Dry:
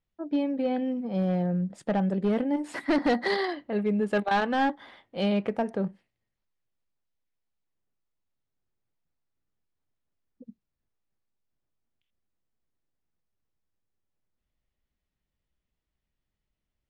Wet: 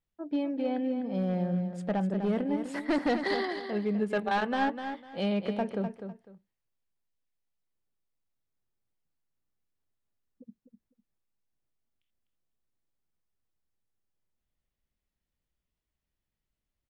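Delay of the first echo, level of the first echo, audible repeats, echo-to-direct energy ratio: 251 ms, −8.5 dB, 2, −8.5 dB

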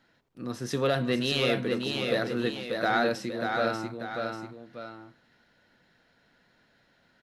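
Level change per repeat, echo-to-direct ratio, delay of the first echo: −7.0 dB, −3.5 dB, 590 ms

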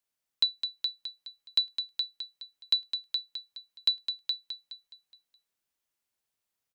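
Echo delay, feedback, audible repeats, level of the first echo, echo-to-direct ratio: 419 ms, 21%, 3, −6.0 dB, −6.0 dB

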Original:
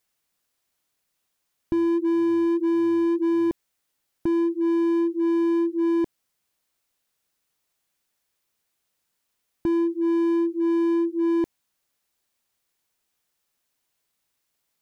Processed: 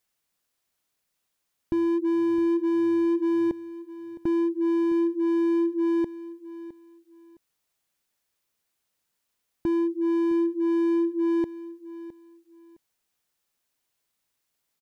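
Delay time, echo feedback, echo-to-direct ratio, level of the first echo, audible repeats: 662 ms, 24%, −16.0 dB, −16.0 dB, 2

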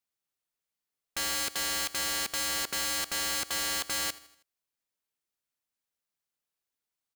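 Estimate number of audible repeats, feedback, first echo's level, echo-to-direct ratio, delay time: 3, 50%, −18.5 dB, −17.5 dB, 80 ms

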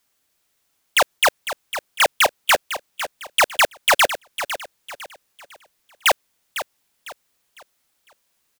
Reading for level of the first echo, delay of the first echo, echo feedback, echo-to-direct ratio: −11.5 dB, 503 ms, 34%, −11.0 dB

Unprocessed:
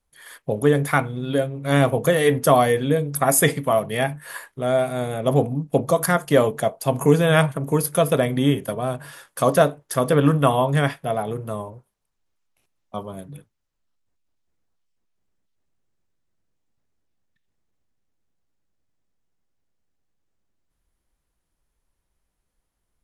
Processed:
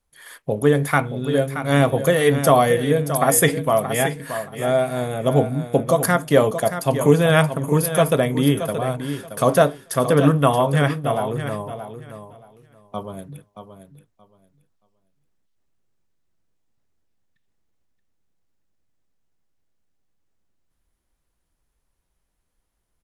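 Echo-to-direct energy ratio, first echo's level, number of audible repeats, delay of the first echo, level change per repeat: −10.0 dB, −10.0 dB, 2, 626 ms, −14.5 dB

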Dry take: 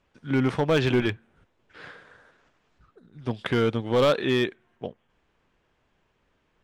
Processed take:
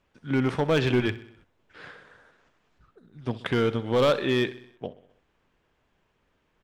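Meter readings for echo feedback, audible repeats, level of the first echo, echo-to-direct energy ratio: 58%, 4, −17.0 dB, −15.0 dB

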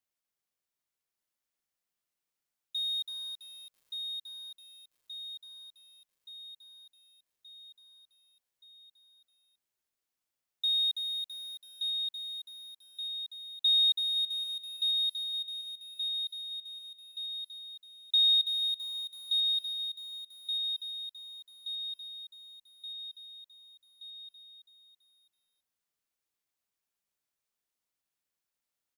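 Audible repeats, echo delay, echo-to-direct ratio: 5, 1,175 ms, −3.0 dB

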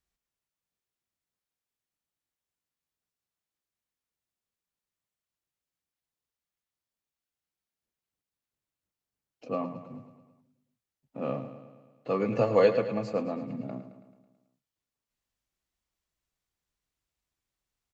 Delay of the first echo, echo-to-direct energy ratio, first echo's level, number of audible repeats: 109 ms, −9.5 dB, −11.5 dB, 6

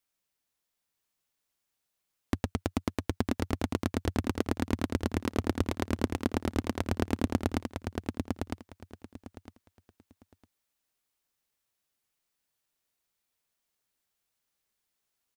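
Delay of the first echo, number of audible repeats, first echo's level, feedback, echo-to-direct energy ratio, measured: 956 ms, 3, −5.0 dB, 21%, −5.0 dB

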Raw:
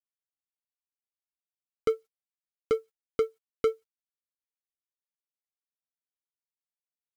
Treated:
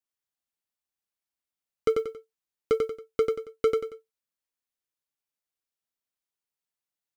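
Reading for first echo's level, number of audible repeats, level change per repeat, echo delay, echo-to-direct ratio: −4.0 dB, 3, −9.0 dB, 92 ms, −3.5 dB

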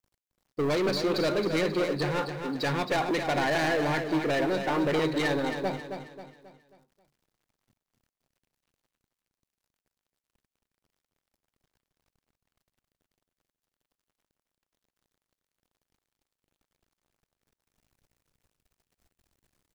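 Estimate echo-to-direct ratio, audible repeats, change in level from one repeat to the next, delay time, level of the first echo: −6.5 dB, 4, −7.5 dB, 269 ms, −7.5 dB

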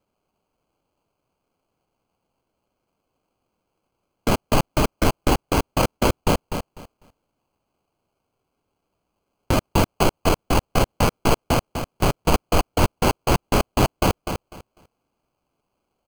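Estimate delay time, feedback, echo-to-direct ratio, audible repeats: 249 ms, 20%, −7.5 dB, 2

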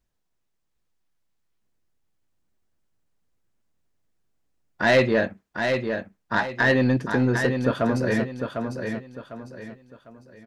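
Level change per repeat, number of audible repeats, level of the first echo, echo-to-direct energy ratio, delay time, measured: −9.5 dB, 4, −6.0 dB, −5.5 dB, 751 ms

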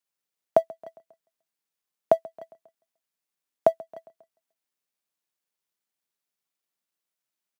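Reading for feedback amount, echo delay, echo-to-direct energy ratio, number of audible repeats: 52%, 135 ms, −21.0 dB, 3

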